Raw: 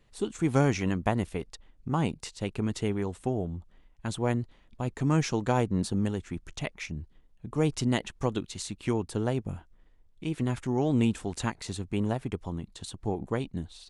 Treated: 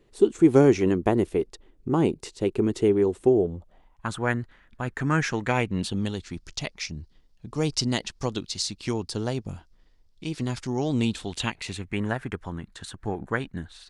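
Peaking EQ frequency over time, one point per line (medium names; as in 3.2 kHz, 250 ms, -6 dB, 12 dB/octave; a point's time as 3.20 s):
peaking EQ +15 dB 0.81 oct
3.38 s 370 Hz
4.25 s 1.6 kHz
5.24 s 1.6 kHz
6.35 s 4.9 kHz
10.95 s 4.9 kHz
12.13 s 1.6 kHz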